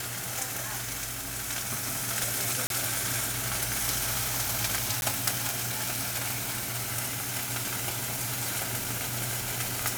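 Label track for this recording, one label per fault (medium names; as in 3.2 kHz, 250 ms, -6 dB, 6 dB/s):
2.670000	2.700000	dropout 32 ms
5.010000	5.020000	dropout 11 ms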